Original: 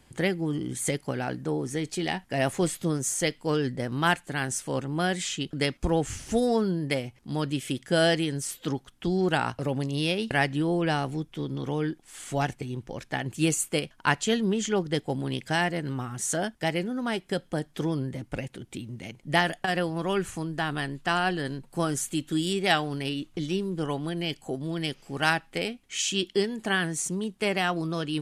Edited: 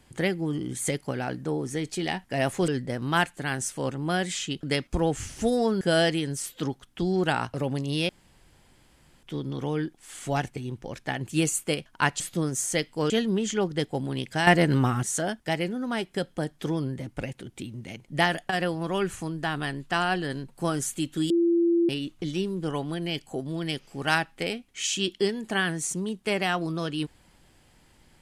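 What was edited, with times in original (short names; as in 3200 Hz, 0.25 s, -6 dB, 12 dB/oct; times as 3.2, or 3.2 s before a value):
2.68–3.58 move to 14.25
6.71–7.86 cut
10.14–11.28 room tone
15.62–16.18 gain +9.5 dB
22.45–23.04 bleep 340 Hz -18.5 dBFS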